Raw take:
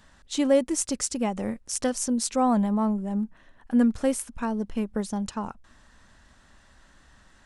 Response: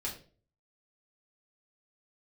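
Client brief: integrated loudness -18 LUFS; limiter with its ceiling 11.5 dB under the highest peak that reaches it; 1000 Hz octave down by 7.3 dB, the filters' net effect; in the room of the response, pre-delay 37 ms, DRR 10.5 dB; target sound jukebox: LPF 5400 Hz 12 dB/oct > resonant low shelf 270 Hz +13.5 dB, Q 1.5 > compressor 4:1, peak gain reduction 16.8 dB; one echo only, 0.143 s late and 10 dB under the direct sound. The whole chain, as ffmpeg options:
-filter_complex "[0:a]equalizer=f=1k:t=o:g=-8.5,alimiter=limit=-21dB:level=0:latency=1,aecho=1:1:143:0.316,asplit=2[a][b];[1:a]atrim=start_sample=2205,adelay=37[c];[b][c]afir=irnorm=-1:irlink=0,volume=-12dB[d];[a][d]amix=inputs=2:normalize=0,lowpass=5.4k,lowshelf=f=270:t=q:w=1.5:g=13.5,acompressor=threshold=-29dB:ratio=4,volume=13dB"

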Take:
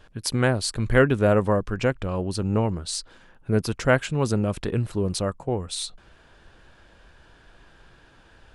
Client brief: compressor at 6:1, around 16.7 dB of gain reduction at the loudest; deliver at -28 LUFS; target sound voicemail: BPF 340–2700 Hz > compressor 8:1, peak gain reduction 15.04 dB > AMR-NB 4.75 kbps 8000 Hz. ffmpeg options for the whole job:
-af "acompressor=threshold=-31dB:ratio=6,highpass=340,lowpass=2.7k,acompressor=threshold=-44dB:ratio=8,volume=25dB" -ar 8000 -c:a libopencore_amrnb -b:a 4750

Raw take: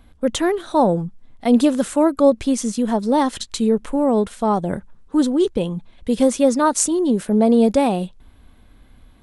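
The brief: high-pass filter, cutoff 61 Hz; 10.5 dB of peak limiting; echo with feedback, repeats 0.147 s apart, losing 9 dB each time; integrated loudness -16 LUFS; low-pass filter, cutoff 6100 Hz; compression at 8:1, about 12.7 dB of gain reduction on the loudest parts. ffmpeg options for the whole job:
-af "highpass=61,lowpass=6.1k,acompressor=threshold=-23dB:ratio=8,alimiter=limit=-23.5dB:level=0:latency=1,aecho=1:1:147|294|441|588:0.355|0.124|0.0435|0.0152,volume=15.5dB"

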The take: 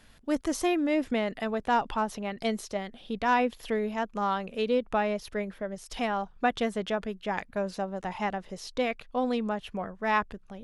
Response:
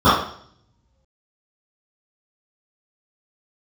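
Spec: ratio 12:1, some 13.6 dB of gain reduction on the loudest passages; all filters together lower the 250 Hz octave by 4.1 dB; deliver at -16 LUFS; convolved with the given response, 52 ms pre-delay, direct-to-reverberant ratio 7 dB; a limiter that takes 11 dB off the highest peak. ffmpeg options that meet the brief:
-filter_complex "[0:a]equalizer=f=250:t=o:g=-5,acompressor=threshold=-34dB:ratio=12,alimiter=level_in=9dB:limit=-24dB:level=0:latency=1,volume=-9dB,asplit=2[a][b];[1:a]atrim=start_sample=2205,adelay=52[c];[b][c]afir=irnorm=-1:irlink=0,volume=-35.5dB[d];[a][d]amix=inputs=2:normalize=0,volume=26dB"

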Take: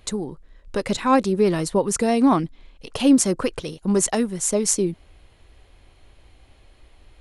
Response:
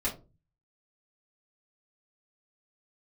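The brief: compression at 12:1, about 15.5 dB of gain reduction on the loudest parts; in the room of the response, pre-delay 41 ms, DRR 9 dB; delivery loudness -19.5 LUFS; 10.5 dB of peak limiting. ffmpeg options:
-filter_complex "[0:a]acompressor=threshold=-27dB:ratio=12,alimiter=level_in=1dB:limit=-24dB:level=0:latency=1,volume=-1dB,asplit=2[a][b];[1:a]atrim=start_sample=2205,adelay=41[c];[b][c]afir=irnorm=-1:irlink=0,volume=-15dB[d];[a][d]amix=inputs=2:normalize=0,volume=15dB"

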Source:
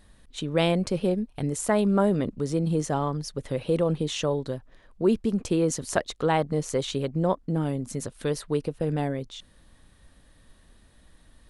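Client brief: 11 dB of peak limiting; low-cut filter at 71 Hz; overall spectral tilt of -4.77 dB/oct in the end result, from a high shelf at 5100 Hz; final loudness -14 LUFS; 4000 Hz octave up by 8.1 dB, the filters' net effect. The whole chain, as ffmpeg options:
-af "highpass=71,equalizer=f=4k:t=o:g=8.5,highshelf=f=5.1k:g=4,volume=14dB,alimiter=limit=-3dB:level=0:latency=1"

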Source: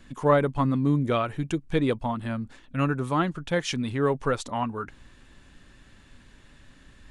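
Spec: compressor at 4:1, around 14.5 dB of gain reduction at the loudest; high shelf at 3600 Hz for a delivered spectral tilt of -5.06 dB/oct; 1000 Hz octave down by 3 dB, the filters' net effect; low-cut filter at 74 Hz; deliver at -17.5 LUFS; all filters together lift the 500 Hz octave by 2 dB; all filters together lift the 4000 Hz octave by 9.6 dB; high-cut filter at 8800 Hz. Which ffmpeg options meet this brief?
-af "highpass=74,lowpass=8.8k,equalizer=f=500:t=o:g=3.5,equalizer=f=1k:t=o:g=-6,highshelf=f=3.6k:g=7.5,equalizer=f=4k:t=o:g=8.5,acompressor=threshold=-33dB:ratio=4,volume=18.5dB"

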